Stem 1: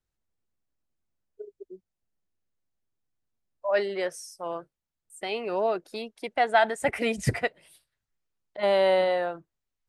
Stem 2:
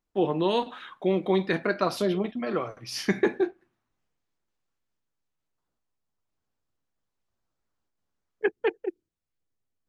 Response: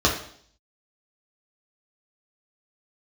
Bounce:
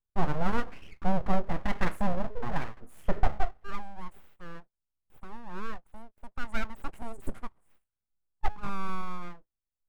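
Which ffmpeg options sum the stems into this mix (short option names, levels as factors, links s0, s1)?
-filter_complex "[0:a]volume=0.316,asplit=2[s0][s1];[1:a]bandreject=f=209.9:t=h:w=4,bandreject=f=419.8:t=h:w=4,bandreject=f=629.7:t=h:w=4,bandreject=f=839.6:t=h:w=4,bandreject=f=1049.5:t=h:w=4,agate=range=0.158:threshold=0.00355:ratio=16:detection=peak,highshelf=f=3900:g=-8.5,volume=0.794[s2];[s1]apad=whole_len=435900[s3];[s2][s3]sidechaincompress=threshold=0.00447:ratio=8:attack=16:release=457[s4];[s0][s4]amix=inputs=2:normalize=0,asuperstop=centerf=3500:order=20:qfactor=0.62,aeval=exprs='abs(val(0))':c=same,lowshelf=f=100:g=9"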